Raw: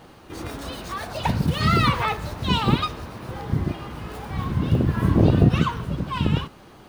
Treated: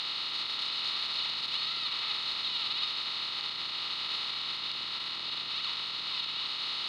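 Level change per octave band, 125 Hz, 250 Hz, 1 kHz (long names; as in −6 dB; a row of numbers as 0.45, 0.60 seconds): below −35 dB, −33.0 dB, −15.5 dB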